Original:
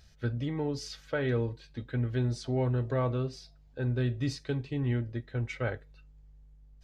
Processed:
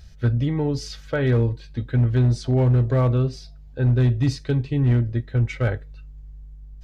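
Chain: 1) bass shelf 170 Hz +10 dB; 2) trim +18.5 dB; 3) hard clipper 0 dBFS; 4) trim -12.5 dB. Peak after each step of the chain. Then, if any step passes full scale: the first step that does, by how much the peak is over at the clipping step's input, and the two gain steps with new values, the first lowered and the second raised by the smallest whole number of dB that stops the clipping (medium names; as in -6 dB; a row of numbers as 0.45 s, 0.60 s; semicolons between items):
-14.5 dBFS, +4.0 dBFS, 0.0 dBFS, -12.5 dBFS; step 2, 4.0 dB; step 2 +14.5 dB, step 4 -8.5 dB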